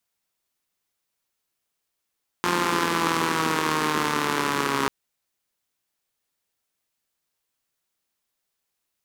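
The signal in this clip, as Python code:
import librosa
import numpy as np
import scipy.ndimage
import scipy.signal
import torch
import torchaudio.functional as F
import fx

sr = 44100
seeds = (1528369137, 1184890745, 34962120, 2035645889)

y = fx.engine_four_rev(sr, seeds[0], length_s=2.44, rpm=5300, resonances_hz=(260.0, 370.0, 1000.0), end_rpm=4100)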